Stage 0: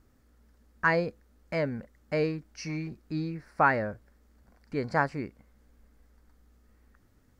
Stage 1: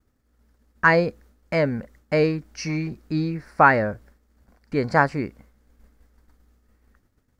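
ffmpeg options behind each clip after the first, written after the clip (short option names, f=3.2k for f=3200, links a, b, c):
-af "agate=range=-33dB:threshold=-54dB:ratio=3:detection=peak,volume=8dB"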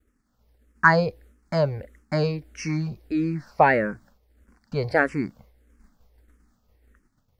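-filter_complex "[0:a]asplit=2[a][b];[b]afreqshift=-1.6[c];[a][c]amix=inputs=2:normalize=1,volume=2dB"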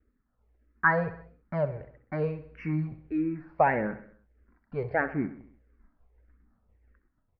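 -af "aphaser=in_gain=1:out_gain=1:delay=3.1:decay=0.37:speed=0.76:type=sinusoidal,lowpass=f=2.3k:w=0.5412,lowpass=f=2.3k:w=1.3066,aecho=1:1:65|130|195|260|325:0.2|0.106|0.056|0.0297|0.0157,volume=-7dB"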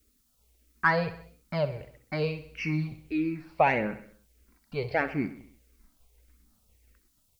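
-af "aexciter=amount=8.7:drive=8:freq=2.6k"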